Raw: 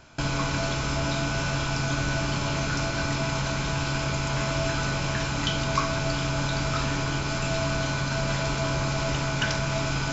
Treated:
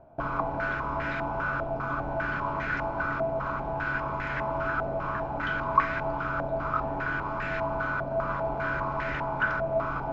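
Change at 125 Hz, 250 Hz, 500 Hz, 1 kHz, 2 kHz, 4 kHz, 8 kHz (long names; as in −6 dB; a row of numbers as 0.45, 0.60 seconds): −10.0 dB, −7.0 dB, +0.5 dB, +2.5 dB, 0.0 dB, −19.5 dB, can't be measured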